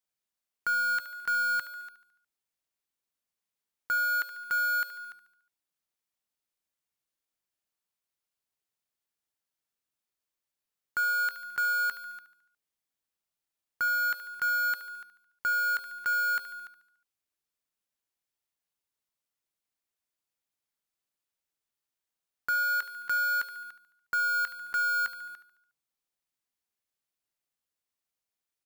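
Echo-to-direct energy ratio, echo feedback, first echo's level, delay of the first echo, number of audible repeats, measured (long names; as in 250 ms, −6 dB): −11.5 dB, 53%, −13.0 dB, 72 ms, 4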